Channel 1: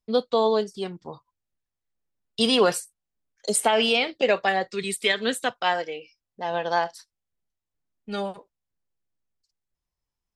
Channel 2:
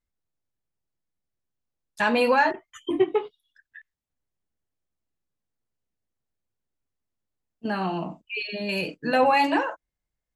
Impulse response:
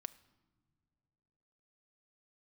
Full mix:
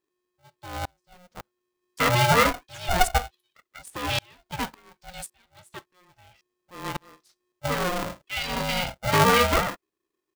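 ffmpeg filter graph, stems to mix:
-filter_complex "[0:a]dynaudnorm=framelen=280:gausssize=7:maxgain=13.5dB,aeval=exprs='val(0)*pow(10,-38*if(lt(mod(-1.8*n/s,1),2*abs(-1.8)/1000),1-mod(-1.8*n/s,1)/(2*abs(-1.8)/1000),(mod(-1.8*n/s,1)-2*abs(-1.8)/1000)/(1-2*abs(-1.8)/1000))/20)':channel_layout=same,adelay=300,volume=1dB,afade=type=out:start_time=5.1:duration=0.27:silence=0.334965,afade=type=in:start_time=6.24:duration=0.28:silence=0.375837[link_01];[1:a]volume=1dB[link_02];[link_01][link_02]amix=inputs=2:normalize=0,aeval=exprs='val(0)*sgn(sin(2*PI*360*n/s))':channel_layout=same"

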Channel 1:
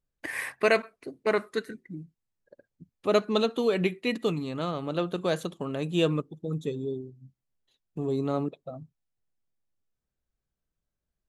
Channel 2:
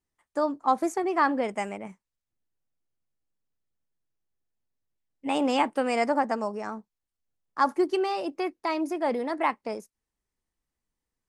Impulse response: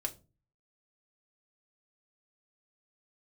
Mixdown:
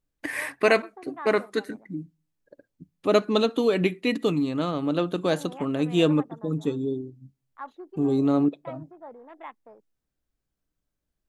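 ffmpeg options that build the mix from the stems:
-filter_complex "[0:a]equalizer=frequency=290:width_type=o:width=0.24:gain=9,volume=2dB,asplit=2[link_01][link_02];[link_02]volume=-23.5dB[link_03];[1:a]lowpass=2600,afwtdn=0.0178,lowshelf=frequency=310:gain=-10.5,volume=-14dB[link_04];[2:a]atrim=start_sample=2205[link_05];[link_03][link_05]afir=irnorm=-1:irlink=0[link_06];[link_01][link_04][link_06]amix=inputs=3:normalize=0"

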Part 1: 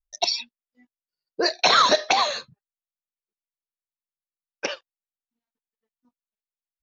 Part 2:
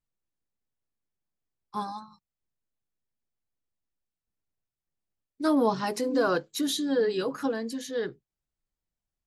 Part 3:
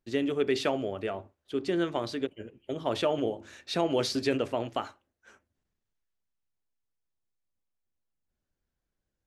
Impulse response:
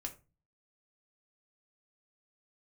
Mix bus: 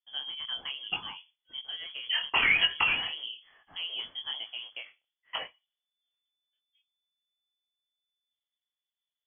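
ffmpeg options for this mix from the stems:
-filter_complex "[0:a]adelay=700,volume=-5dB,asplit=2[link_01][link_02];[link_02]volume=-7dB[link_03];[2:a]volume=-6.5dB[link_04];[3:a]atrim=start_sample=2205[link_05];[link_03][link_05]afir=irnorm=-1:irlink=0[link_06];[link_01][link_04][link_06]amix=inputs=3:normalize=0,flanger=delay=19:depth=7.4:speed=1.1,lowpass=frequency=3000:width_type=q:width=0.5098,lowpass=frequency=3000:width_type=q:width=0.6013,lowpass=frequency=3000:width_type=q:width=0.9,lowpass=frequency=3000:width_type=q:width=2.563,afreqshift=-3500"

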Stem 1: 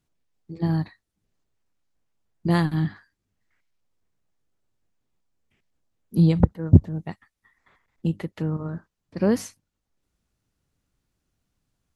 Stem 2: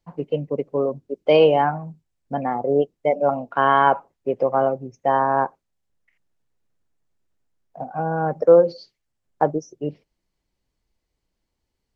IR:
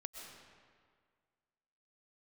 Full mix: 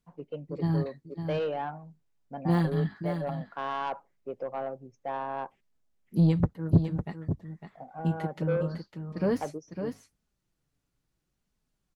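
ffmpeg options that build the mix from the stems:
-filter_complex "[0:a]deesser=0.95,flanger=delay=4.6:depth=2.5:regen=-28:speed=0.69:shape=sinusoidal,asoftclip=type=tanh:threshold=-13dB,volume=-1dB,asplit=2[link_01][link_02];[link_02]volume=-8dB[link_03];[1:a]asoftclip=type=tanh:threshold=-11dB,volume=-13.5dB[link_04];[link_03]aecho=0:1:554:1[link_05];[link_01][link_04][link_05]amix=inputs=3:normalize=0"

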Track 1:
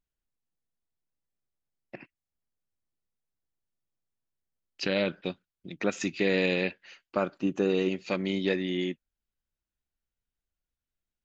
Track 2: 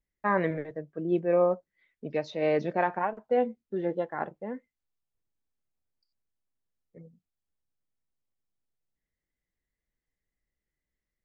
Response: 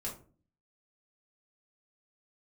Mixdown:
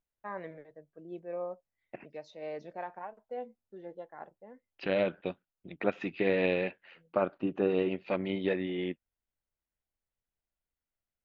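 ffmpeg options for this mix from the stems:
-filter_complex "[0:a]lowpass=frequency=3200:width=0.5412,lowpass=frequency=3200:width=1.3066,tremolo=f=88:d=0.462,volume=-3dB[link_01];[1:a]highshelf=frequency=3700:gain=12,volume=-19dB[link_02];[link_01][link_02]amix=inputs=2:normalize=0,equalizer=frequency=690:width_type=o:width=1.5:gain=6.5"

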